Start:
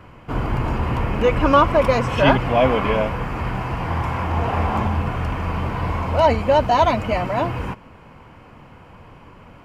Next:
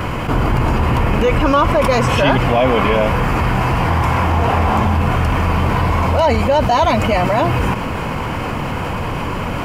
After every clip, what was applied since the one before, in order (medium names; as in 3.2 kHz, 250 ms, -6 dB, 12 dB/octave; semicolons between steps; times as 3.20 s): treble shelf 5.2 kHz +7.5 dB; level flattener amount 70%; trim -1 dB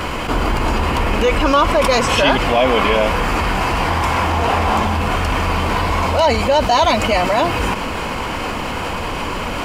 graphic EQ 125/4000/8000 Hz -11/+6/+5 dB; crackle 84 per s -38 dBFS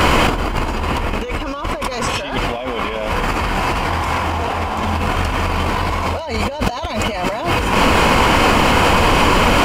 in parallel at +1 dB: peak limiter -9.5 dBFS, peak gain reduction 8 dB; on the sum: compressor with a negative ratio -15 dBFS, ratio -0.5; trim -1 dB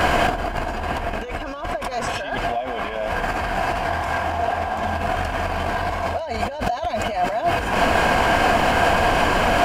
small resonant body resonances 700/1600 Hz, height 14 dB, ringing for 35 ms; trim -8 dB